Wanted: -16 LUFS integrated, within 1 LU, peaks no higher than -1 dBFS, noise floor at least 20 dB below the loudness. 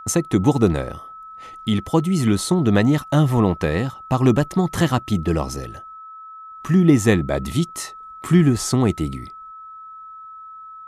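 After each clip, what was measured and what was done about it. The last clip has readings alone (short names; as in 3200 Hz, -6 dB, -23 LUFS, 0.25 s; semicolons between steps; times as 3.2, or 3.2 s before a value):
steady tone 1300 Hz; tone level -36 dBFS; loudness -19.5 LUFS; peak -2.0 dBFS; loudness target -16.0 LUFS
-> notch 1300 Hz, Q 30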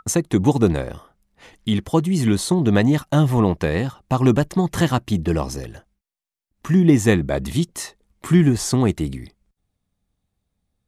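steady tone none; loudness -19.5 LUFS; peak -2.0 dBFS; loudness target -16.0 LUFS
-> gain +3.5 dB; limiter -1 dBFS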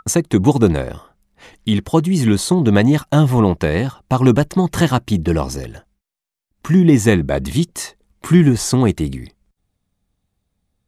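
loudness -16.0 LUFS; peak -1.0 dBFS; noise floor -76 dBFS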